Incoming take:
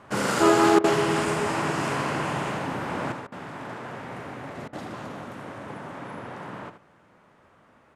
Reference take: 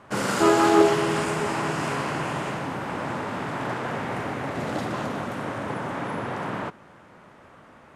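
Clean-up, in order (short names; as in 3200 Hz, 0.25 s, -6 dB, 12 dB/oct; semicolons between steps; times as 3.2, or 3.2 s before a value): interpolate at 0.79/3.27/4.68, 49 ms; inverse comb 79 ms -10 dB; gain 0 dB, from 3.12 s +8 dB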